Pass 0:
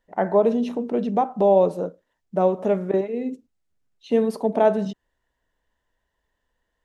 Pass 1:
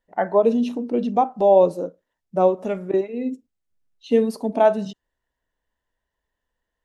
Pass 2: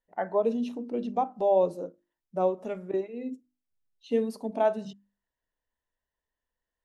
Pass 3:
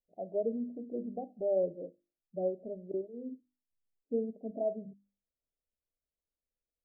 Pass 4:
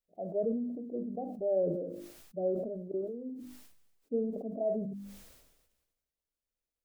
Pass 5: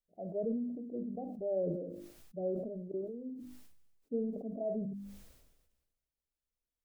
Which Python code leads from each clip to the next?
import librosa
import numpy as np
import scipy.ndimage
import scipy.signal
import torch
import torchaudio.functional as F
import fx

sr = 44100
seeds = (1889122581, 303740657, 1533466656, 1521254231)

y1 = fx.noise_reduce_blind(x, sr, reduce_db=8)
y1 = y1 * librosa.db_to_amplitude(3.0)
y2 = fx.hum_notches(y1, sr, base_hz=50, count=7)
y2 = y2 * librosa.db_to_amplitude(-8.5)
y3 = scipy.signal.sosfilt(scipy.signal.butter(12, 680.0, 'lowpass', fs=sr, output='sos'), y2)
y3 = y3 * librosa.db_to_amplitude(-6.5)
y4 = fx.sustainer(y3, sr, db_per_s=46.0)
y5 = fx.low_shelf(y4, sr, hz=250.0, db=8.5)
y5 = y5 * librosa.db_to_amplitude(-6.0)